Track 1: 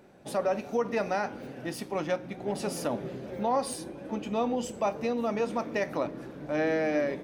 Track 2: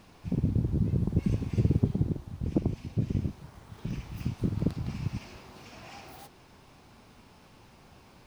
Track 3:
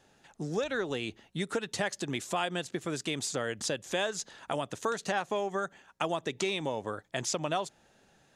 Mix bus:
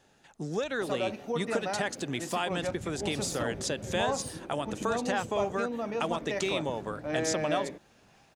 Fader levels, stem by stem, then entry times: -4.5 dB, -17.0 dB, 0.0 dB; 0.55 s, 2.25 s, 0.00 s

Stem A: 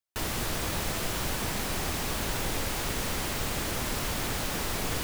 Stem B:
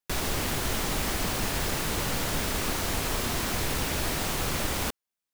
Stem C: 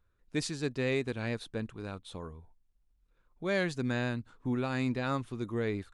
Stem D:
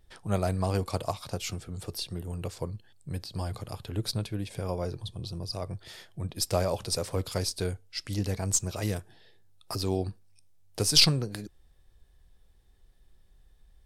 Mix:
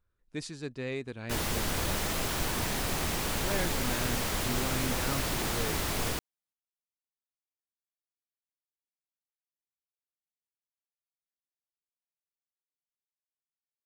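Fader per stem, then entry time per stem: -1.5 dB, -8.0 dB, -5.0 dB, mute; 1.15 s, 1.20 s, 0.00 s, mute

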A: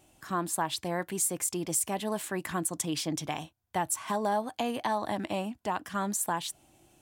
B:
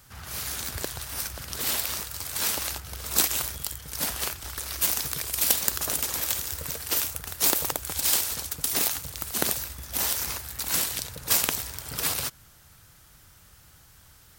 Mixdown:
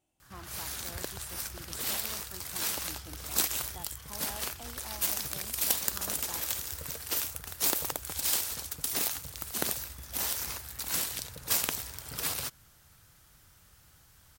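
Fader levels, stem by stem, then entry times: -18.0 dB, -5.5 dB; 0.00 s, 0.20 s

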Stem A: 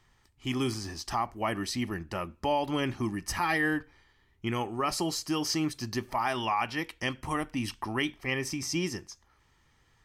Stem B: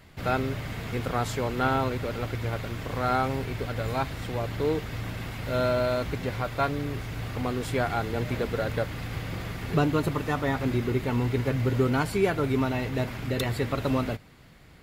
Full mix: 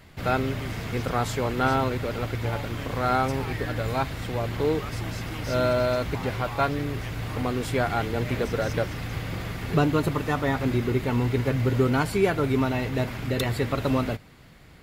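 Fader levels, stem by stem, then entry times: -11.0 dB, +2.0 dB; 0.00 s, 0.00 s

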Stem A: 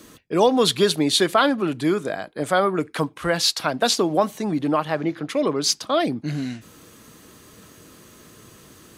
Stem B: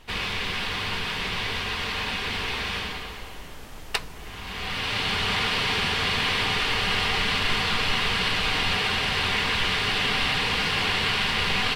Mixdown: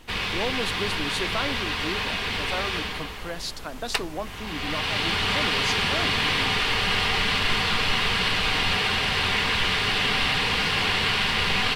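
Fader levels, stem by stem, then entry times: -13.0 dB, +1.0 dB; 0.00 s, 0.00 s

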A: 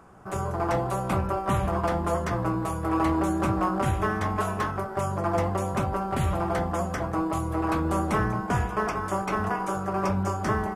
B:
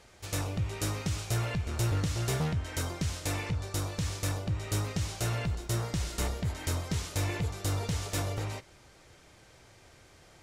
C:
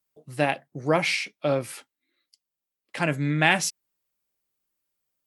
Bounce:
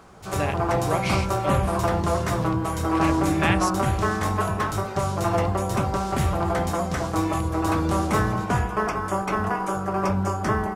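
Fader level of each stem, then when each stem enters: +2.5 dB, -1.0 dB, -5.0 dB; 0.00 s, 0.00 s, 0.00 s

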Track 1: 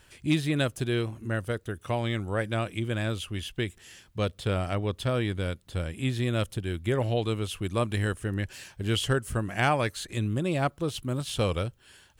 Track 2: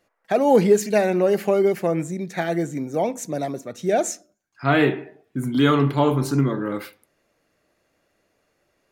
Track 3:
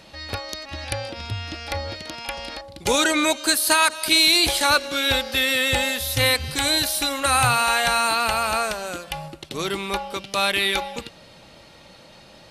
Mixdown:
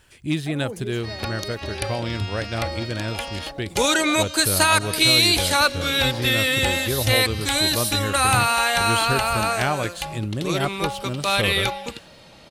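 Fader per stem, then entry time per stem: +1.0 dB, -19.5 dB, 0.0 dB; 0.00 s, 0.15 s, 0.90 s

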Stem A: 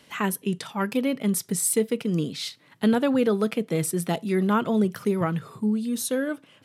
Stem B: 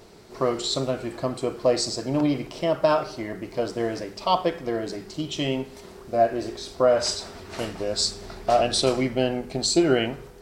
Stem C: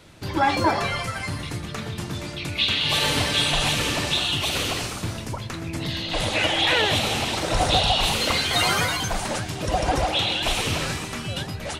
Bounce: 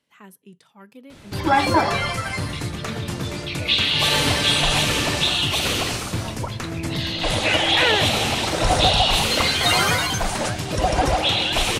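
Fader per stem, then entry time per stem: -19.5 dB, -19.0 dB, +3.0 dB; 0.00 s, 1.95 s, 1.10 s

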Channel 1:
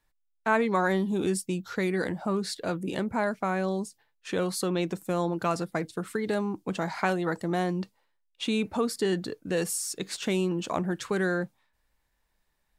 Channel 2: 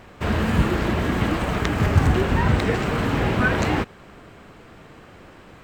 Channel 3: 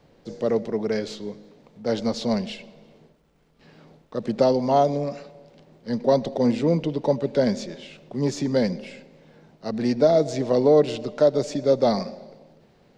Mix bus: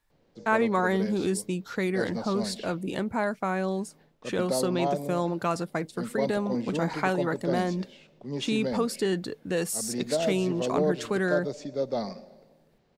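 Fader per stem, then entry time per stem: 0.0 dB, mute, -10.0 dB; 0.00 s, mute, 0.10 s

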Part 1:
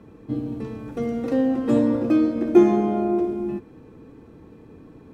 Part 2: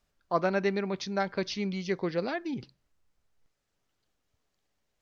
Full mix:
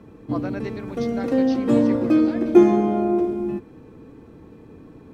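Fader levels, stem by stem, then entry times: +1.5 dB, -6.0 dB; 0.00 s, 0.00 s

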